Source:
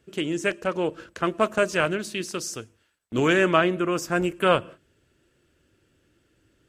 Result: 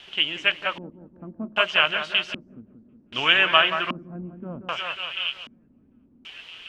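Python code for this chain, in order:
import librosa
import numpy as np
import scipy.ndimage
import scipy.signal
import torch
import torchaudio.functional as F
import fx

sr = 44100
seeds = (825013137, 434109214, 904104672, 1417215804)

p1 = fx.low_shelf_res(x, sr, hz=560.0, db=-11.0, q=1.5)
p2 = fx.quant_dither(p1, sr, seeds[0], bits=6, dither='triangular')
p3 = p1 + (p2 * 10.0 ** (-8.5 / 20.0))
p4 = fx.echo_split(p3, sr, split_hz=2100.0, low_ms=180, high_ms=743, feedback_pct=52, wet_db=-8)
p5 = fx.filter_lfo_lowpass(p4, sr, shape='square', hz=0.64, low_hz=240.0, high_hz=3000.0, q=6.1)
y = p5 * 10.0 ** (-4.0 / 20.0)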